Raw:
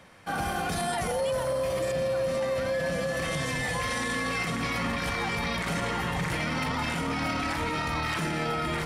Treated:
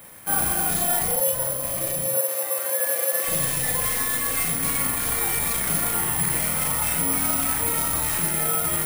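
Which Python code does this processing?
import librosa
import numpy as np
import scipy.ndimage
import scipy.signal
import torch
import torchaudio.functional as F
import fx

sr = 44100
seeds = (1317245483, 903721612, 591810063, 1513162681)

y = fx.tracing_dist(x, sr, depth_ms=0.14)
y = fx.cheby1_highpass(y, sr, hz=360.0, order=4, at=(2.17, 3.28))
y = fx.rider(y, sr, range_db=4, speed_s=0.5)
y = fx.doubler(y, sr, ms=37.0, db=-2.5)
y = (np.kron(y[::4], np.eye(4)[0]) * 4)[:len(y)]
y = F.gain(torch.from_numpy(y), -2.0).numpy()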